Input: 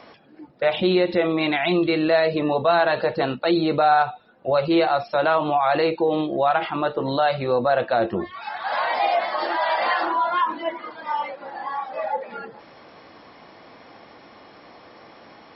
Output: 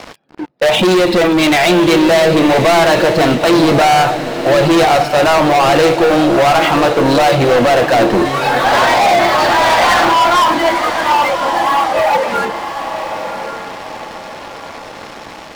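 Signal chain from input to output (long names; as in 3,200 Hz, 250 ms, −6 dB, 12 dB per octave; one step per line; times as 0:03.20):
leveller curve on the samples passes 5
feedback delay with all-pass diffusion 1,081 ms, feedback 41%, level −8.5 dB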